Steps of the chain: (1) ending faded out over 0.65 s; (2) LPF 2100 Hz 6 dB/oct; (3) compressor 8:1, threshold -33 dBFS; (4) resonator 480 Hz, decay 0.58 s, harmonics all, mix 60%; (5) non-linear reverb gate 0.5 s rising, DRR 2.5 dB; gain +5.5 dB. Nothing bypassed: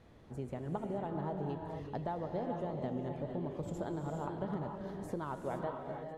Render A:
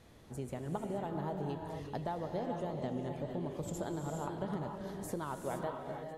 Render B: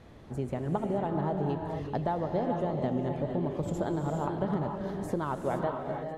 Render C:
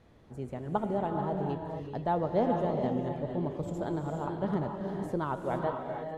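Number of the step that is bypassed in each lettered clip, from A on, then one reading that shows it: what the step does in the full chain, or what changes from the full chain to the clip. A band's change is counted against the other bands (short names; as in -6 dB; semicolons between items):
2, 8 kHz band +11.0 dB; 4, loudness change +7.5 LU; 3, mean gain reduction 4.5 dB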